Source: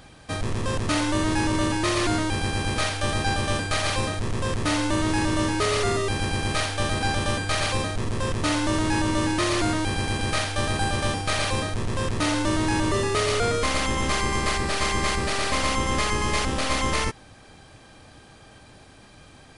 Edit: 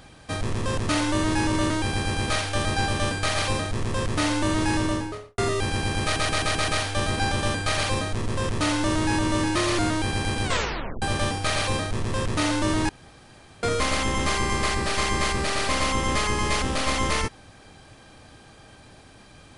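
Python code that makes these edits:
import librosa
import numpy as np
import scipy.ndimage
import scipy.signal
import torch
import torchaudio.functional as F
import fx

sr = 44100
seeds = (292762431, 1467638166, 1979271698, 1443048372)

y = fx.studio_fade_out(x, sr, start_s=5.24, length_s=0.62)
y = fx.edit(y, sr, fx.cut(start_s=1.7, length_s=0.48),
    fx.stutter(start_s=6.51, slice_s=0.13, count=6),
    fx.tape_stop(start_s=10.27, length_s=0.58),
    fx.room_tone_fill(start_s=12.72, length_s=0.74), tone=tone)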